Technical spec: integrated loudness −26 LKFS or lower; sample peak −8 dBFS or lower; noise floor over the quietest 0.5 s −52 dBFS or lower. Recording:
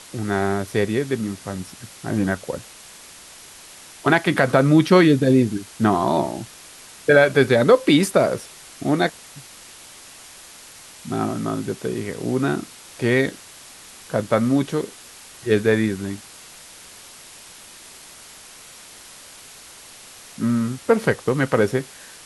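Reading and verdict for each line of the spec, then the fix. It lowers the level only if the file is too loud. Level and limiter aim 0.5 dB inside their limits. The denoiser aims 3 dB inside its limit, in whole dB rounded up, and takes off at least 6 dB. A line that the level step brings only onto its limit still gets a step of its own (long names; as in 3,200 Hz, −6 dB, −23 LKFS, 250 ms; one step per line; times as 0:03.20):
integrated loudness −20.5 LKFS: out of spec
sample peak −3.0 dBFS: out of spec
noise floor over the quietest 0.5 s −43 dBFS: out of spec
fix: broadband denoise 6 dB, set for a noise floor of −43 dBFS
level −6 dB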